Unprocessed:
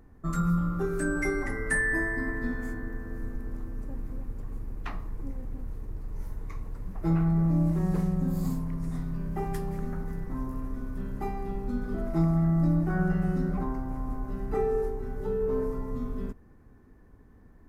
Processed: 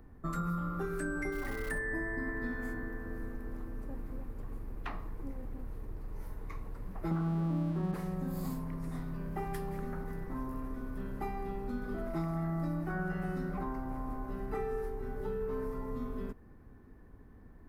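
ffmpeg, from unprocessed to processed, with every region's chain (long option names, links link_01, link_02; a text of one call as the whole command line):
ffmpeg -i in.wav -filter_complex "[0:a]asettb=1/sr,asplit=3[link_01][link_02][link_03];[link_01]atrim=end=1.324[link_04];[link_02]atrim=start=1.32:end=1.79,asetpts=PTS-STARTPTS,afade=type=in:duration=0.004:curve=qsin,afade=type=out:start_time=0.466:duration=0.004:curve=qsin,asubboost=boost=4.5:cutoff=150,bandreject=frequency=2000:width=22,acrusher=bits=8:dc=4:mix=0:aa=0.000001[link_05];[link_03]atrim=start=1.786[link_06];[link_04][link_05]acrossfade=duration=0.004:curve1=hsin:curve2=qsin[link_07];[link_07][link_06]acrossfade=duration=0.004:curve1=qsin:curve2=hsin,asettb=1/sr,asplit=3[link_08][link_09][link_10];[link_08]atrim=end=7.114[link_11];[link_09]atrim=start=7.11:end=7.94,asetpts=PTS-STARTPTS,afade=type=in:duration=0.004:curve=qsin,afade=type=out:start_time=0.826:duration=0.004:curve=qsin,lowpass=frequency=1500:width=0.5412,lowpass=frequency=1500:width=1.3066,equalizer=frequency=220:width_type=o:width=2:gain=10.5,aeval=exprs='sgn(val(0))*max(abs(val(0))-0.00376,0)':channel_layout=same[link_12];[link_10]atrim=start=7.936[link_13];[link_11][link_12]acrossfade=duration=0.004:curve1=hsin:curve2=qsin[link_14];[link_14][link_13]acrossfade=duration=0.004:curve1=qsin:curve2=hsin,acrossover=split=280|1000[link_15][link_16][link_17];[link_15]acompressor=threshold=-38dB:ratio=4[link_18];[link_16]acompressor=threshold=-40dB:ratio=4[link_19];[link_17]acompressor=threshold=-41dB:ratio=4[link_20];[link_18][link_19][link_20]amix=inputs=3:normalize=0,equalizer=frequency=6800:width=1.4:gain=-6.5" out.wav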